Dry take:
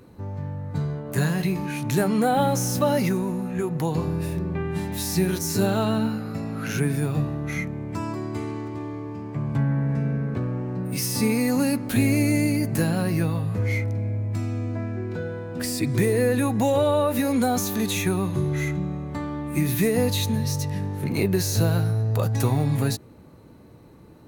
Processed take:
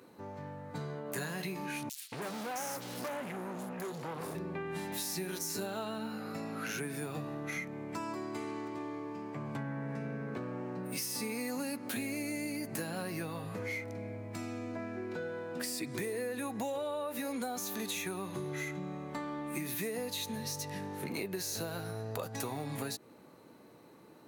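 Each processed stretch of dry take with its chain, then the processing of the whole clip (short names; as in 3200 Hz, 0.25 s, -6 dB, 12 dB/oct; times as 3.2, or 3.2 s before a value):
1.89–4.35 overloaded stage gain 29 dB + bands offset in time highs, lows 0.23 s, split 3200 Hz
whole clip: HPF 180 Hz 12 dB/oct; low shelf 310 Hz -8.5 dB; compressor 5:1, threshold -33 dBFS; gain -2 dB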